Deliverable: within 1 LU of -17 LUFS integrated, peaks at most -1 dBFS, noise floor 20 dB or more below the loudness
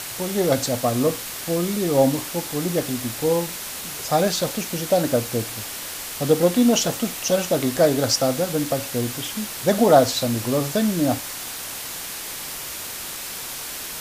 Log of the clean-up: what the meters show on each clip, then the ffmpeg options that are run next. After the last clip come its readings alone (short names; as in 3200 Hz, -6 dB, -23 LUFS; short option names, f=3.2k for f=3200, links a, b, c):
noise floor -33 dBFS; noise floor target -43 dBFS; loudness -22.5 LUFS; peak -2.5 dBFS; loudness target -17.0 LUFS
-> -af "afftdn=nr=10:nf=-33"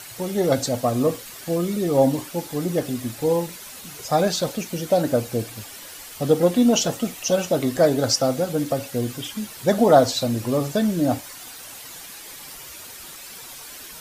noise floor -40 dBFS; noise floor target -42 dBFS
-> -af "afftdn=nr=6:nf=-40"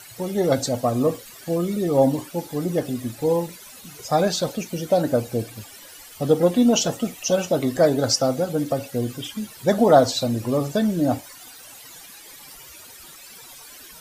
noise floor -44 dBFS; loudness -22.0 LUFS; peak -2.5 dBFS; loudness target -17.0 LUFS
-> -af "volume=5dB,alimiter=limit=-1dB:level=0:latency=1"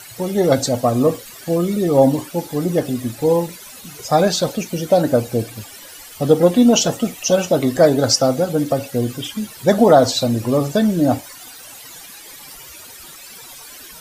loudness -17.0 LUFS; peak -1.0 dBFS; noise floor -39 dBFS